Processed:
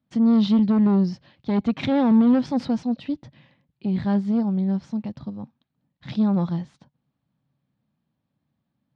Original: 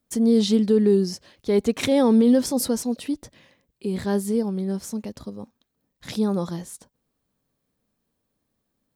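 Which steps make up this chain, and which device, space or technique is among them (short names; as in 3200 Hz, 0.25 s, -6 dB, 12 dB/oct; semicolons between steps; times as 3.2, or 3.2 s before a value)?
guitar amplifier (tube stage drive 16 dB, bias 0.6; tone controls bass +9 dB, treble +2 dB; speaker cabinet 110–3900 Hz, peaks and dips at 140 Hz +7 dB, 430 Hz -10 dB, 840 Hz +4 dB)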